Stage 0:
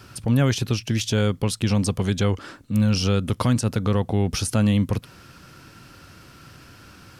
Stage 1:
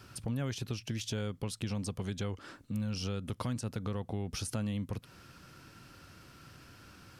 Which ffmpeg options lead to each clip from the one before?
-af "acompressor=threshold=-27dB:ratio=2.5,volume=-8dB"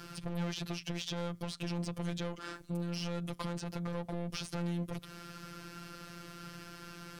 -filter_complex "[0:a]asoftclip=type=tanh:threshold=-38.5dB,afftfilt=real='hypot(re,im)*cos(PI*b)':imag='0':win_size=1024:overlap=0.75,acrossover=split=5200[a][b];[b]acompressor=threshold=-58dB:ratio=4:attack=1:release=60[c];[a][c]amix=inputs=2:normalize=0,volume=10dB"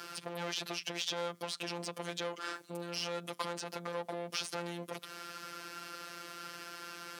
-af "highpass=430,volume=4.5dB"

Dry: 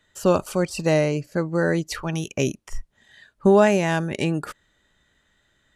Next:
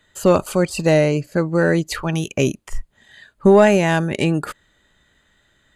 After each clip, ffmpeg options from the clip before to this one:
-af "bandreject=f=5.6k:w=6.9,acontrast=30"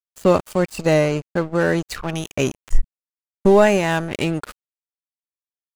-af "asubboost=boost=4.5:cutoff=67,aeval=exprs='val(0)+0.00398*(sin(2*PI*50*n/s)+sin(2*PI*2*50*n/s)/2+sin(2*PI*3*50*n/s)/3+sin(2*PI*4*50*n/s)/4+sin(2*PI*5*50*n/s)/5)':c=same,aeval=exprs='sgn(val(0))*max(abs(val(0))-0.0316,0)':c=same"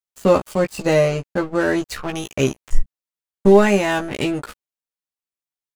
-filter_complex "[0:a]asplit=2[a][b];[b]adelay=15,volume=-4dB[c];[a][c]amix=inputs=2:normalize=0,volume=-1dB"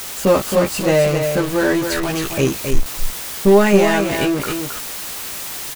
-af "aeval=exprs='val(0)+0.5*0.112*sgn(val(0))':c=same,aecho=1:1:269:0.501,acrusher=bits=8:mode=log:mix=0:aa=0.000001,volume=-1dB"

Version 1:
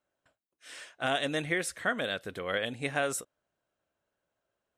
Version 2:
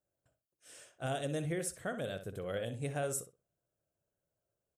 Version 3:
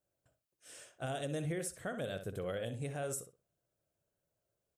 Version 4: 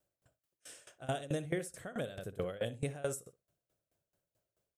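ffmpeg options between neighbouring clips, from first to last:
-filter_complex "[0:a]equalizer=f=125:t=o:w=1:g=6,equalizer=f=250:t=o:w=1:g=-7,equalizer=f=1k:t=o:w=1:g=-10,equalizer=f=2k:t=o:w=1:g=-12,equalizer=f=4k:t=o:w=1:g=-11,asplit=2[a][b];[b]adelay=62,lowpass=f=3.6k:p=1,volume=-10dB,asplit=2[c][d];[d]adelay=62,lowpass=f=3.6k:p=1,volume=0.21,asplit=2[e][f];[f]adelay=62,lowpass=f=3.6k:p=1,volume=0.21[g];[a][c][e][g]amix=inputs=4:normalize=0"
-af "alimiter=level_in=6.5dB:limit=-24dB:level=0:latency=1:release=165,volume=-6.5dB,volume=1.5dB"
-af "aeval=exprs='val(0)*pow(10,-20*if(lt(mod(4.6*n/s,1),2*abs(4.6)/1000),1-mod(4.6*n/s,1)/(2*abs(4.6)/1000),(mod(4.6*n/s,1)-2*abs(4.6)/1000)/(1-2*abs(4.6)/1000))/20)':c=same,volume=7dB"

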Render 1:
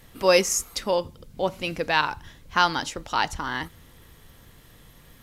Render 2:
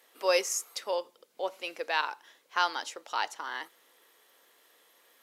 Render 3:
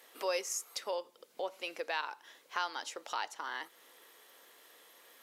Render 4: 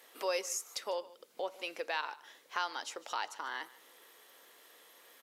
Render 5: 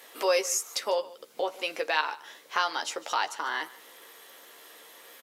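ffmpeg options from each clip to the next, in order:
-af "highpass=f=400:w=0.5412,highpass=f=400:w=1.3066,volume=-7dB"
-af "acompressor=threshold=-44dB:ratio=2,volume=3.5dB"
-af "aecho=1:1:149:0.1"
-filter_complex "[0:a]asplit=2[a][b];[b]adelay=13,volume=-7dB[c];[a][c]amix=inputs=2:normalize=0,volume=8dB"

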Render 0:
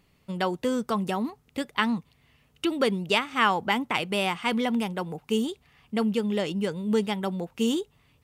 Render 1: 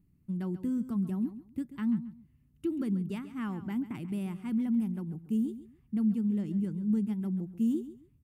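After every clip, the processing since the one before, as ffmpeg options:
-af "firequalizer=gain_entry='entry(170,0);entry(330,-4);entry(470,-24);entry(1600,-21);entry(3400,-29);entry(11000,-12)':delay=0.05:min_phase=1,aecho=1:1:136|272:0.2|0.0439"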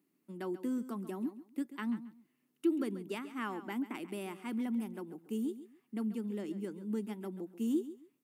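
-af "highpass=f=310:w=0.5412,highpass=f=310:w=1.3066,volume=4dB"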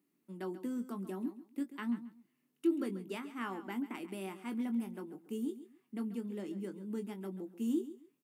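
-filter_complex "[0:a]asplit=2[a][b];[b]adelay=21,volume=-8dB[c];[a][c]amix=inputs=2:normalize=0,volume=-2dB"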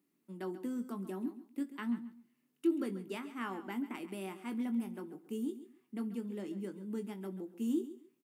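-af "aecho=1:1:64|128|192|256:0.0794|0.0453|0.0258|0.0147"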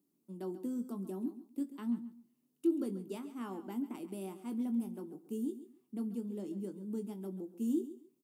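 -af "equalizer=f=1.9k:t=o:w=1.5:g=-15,volume=1dB"

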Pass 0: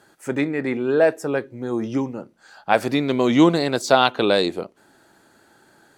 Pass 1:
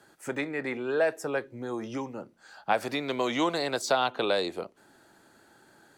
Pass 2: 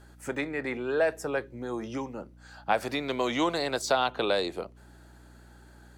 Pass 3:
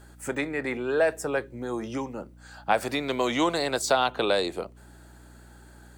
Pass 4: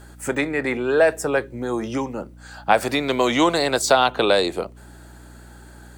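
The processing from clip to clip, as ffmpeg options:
-filter_complex "[0:a]acrossover=split=87|480|1100[a][b][c][d];[a]acompressor=threshold=-58dB:ratio=4[e];[b]acompressor=threshold=-34dB:ratio=4[f];[c]acompressor=threshold=-21dB:ratio=4[g];[d]acompressor=threshold=-26dB:ratio=4[h];[e][f][g][h]amix=inputs=4:normalize=0,volume=-3.5dB"
-af "aeval=exprs='val(0)+0.00251*(sin(2*PI*60*n/s)+sin(2*PI*2*60*n/s)/2+sin(2*PI*3*60*n/s)/3+sin(2*PI*4*60*n/s)/4+sin(2*PI*5*60*n/s)/5)':c=same"
-af "aexciter=amount=1.5:drive=6:freq=7.5k,volume=2.5dB"
-af "volume=6.5dB" -ar 44100 -c:a libvorbis -b:a 192k

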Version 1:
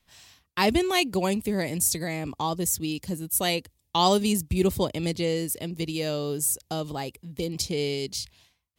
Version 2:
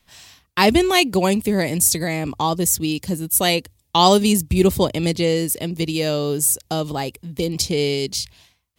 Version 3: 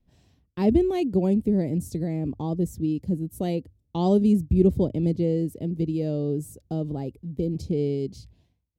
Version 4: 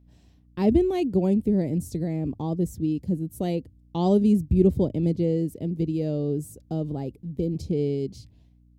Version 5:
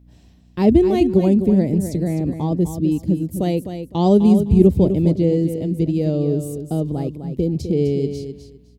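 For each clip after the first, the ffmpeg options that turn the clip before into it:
-af "bandreject=f=50:t=h:w=6,bandreject=f=100:t=h:w=6,volume=7.5dB"
-af "firequalizer=gain_entry='entry(270,0);entry(1100,-22);entry(9300,-27)':delay=0.05:min_phase=1,volume=-1.5dB"
-af "aeval=exprs='val(0)+0.00178*(sin(2*PI*60*n/s)+sin(2*PI*2*60*n/s)/2+sin(2*PI*3*60*n/s)/3+sin(2*PI*4*60*n/s)/4+sin(2*PI*5*60*n/s)/5)':c=same"
-af "aecho=1:1:255|510|765:0.355|0.0674|0.0128,volume=6.5dB"

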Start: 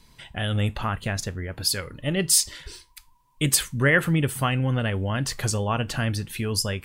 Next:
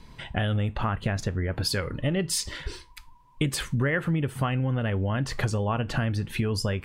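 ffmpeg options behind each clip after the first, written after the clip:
-af "lowpass=f=1.8k:p=1,acompressor=threshold=-31dB:ratio=6,volume=8dB"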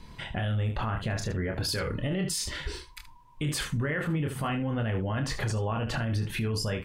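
-filter_complex "[0:a]asplit=2[a][b];[b]aecho=0:1:27|75:0.501|0.237[c];[a][c]amix=inputs=2:normalize=0,alimiter=limit=-22dB:level=0:latency=1:release=11"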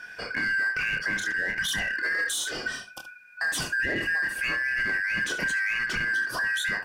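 -filter_complex "[0:a]afftfilt=real='real(if(lt(b,272),68*(eq(floor(b/68),0)*1+eq(floor(b/68),1)*0+eq(floor(b/68),2)*3+eq(floor(b/68),3)*2)+mod(b,68),b),0)':imag='imag(if(lt(b,272),68*(eq(floor(b/68),0)*1+eq(floor(b/68),1)*0+eq(floor(b/68),2)*3+eq(floor(b/68),3)*2)+mod(b,68),b),0)':win_size=2048:overlap=0.75,asplit=2[a][b];[b]asoftclip=type=hard:threshold=-33dB,volume=-6.5dB[c];[a][c]amix=inputs=2:normalize=0"

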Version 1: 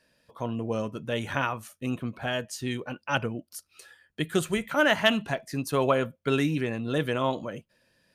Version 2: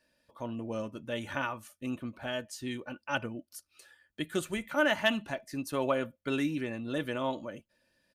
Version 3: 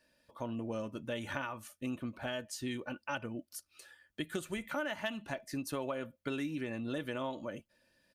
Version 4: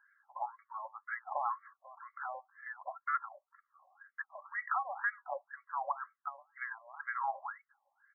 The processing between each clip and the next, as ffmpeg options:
-af "aecho=1:1:3.4:0.41,volume=-6.5dB"
-af "acompressor=threshold=-35dB:ratio=6,volume=1dB"
-af "afreqshift=-110,afftfilt=real='re*between(b*sr/1024,780*pow(1600/780,0.5+0.5*sin(2*PI*2*pts/sr))/1.41,780*pow(1600/780,0.5+0.5*sin(2*PI*2*pts/sr))*1.41)':imag='im*between(b*sr/1024,780*pow(1600/780,0.5+0.5*sin(2*PI*2*pts/sr))/1.41,780*pow(1600/780,0.5+0.5*sin(2*PI*2*pts/sr))*1.41)':win_size=1024:overlap=0.75,volume=9dB"

